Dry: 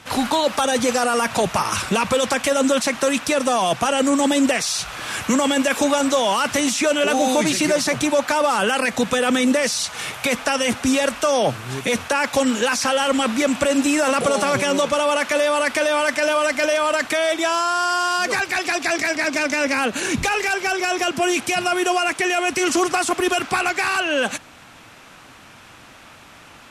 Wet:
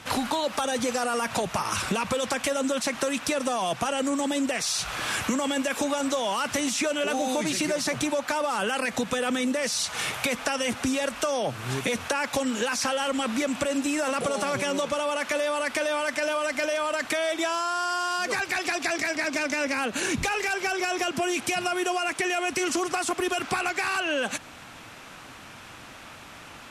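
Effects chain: compressor 6:1, threshold -24 dBFS, peak gain reduction 10 dB

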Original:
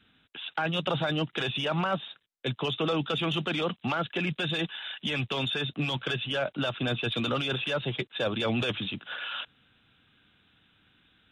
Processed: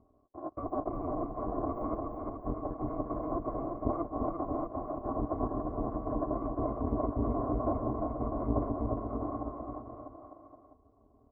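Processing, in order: FFT order left unsorted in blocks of 256 samples; elliptic low-pass 1100 Hz, stop band 70 dB; bell 330 Hz +13 dB 1.6 oct; formant shift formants -3 st; bouncing-ball echo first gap 0.35 s, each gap 0.85×, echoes 5; gain +6.5 dB

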